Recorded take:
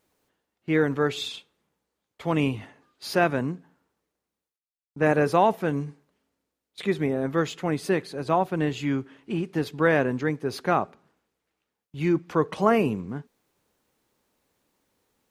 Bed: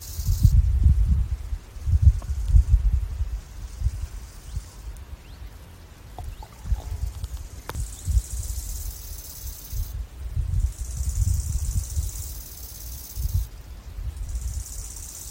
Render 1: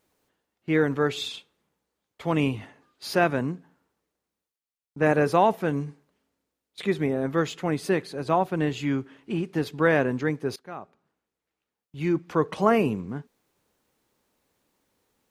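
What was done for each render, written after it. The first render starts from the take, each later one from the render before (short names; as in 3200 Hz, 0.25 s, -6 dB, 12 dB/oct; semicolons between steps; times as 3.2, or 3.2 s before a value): 10.56–12.47 fade in, from -22 dB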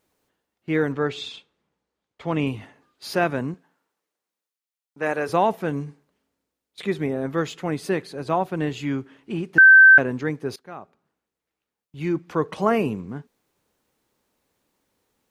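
0.92–2.47 air absorption 68 m; 3.54–5.29 HPF 600 Hz 6 dB/oct; 9.58–9.98 bleep 1550 Hz -6.5 dBFS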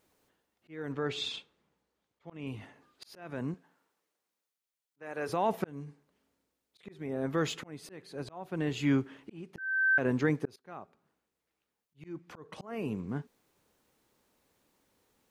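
limiter -16 dBFS, peak gain reduction 9.5 dB; auto swell 0.673 s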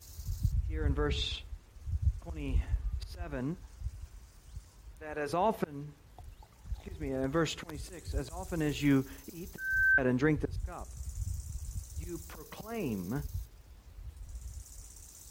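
add bed -14.5 dB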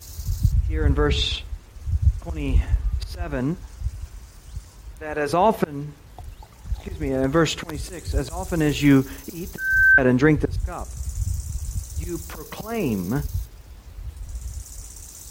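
gain +11.5 dB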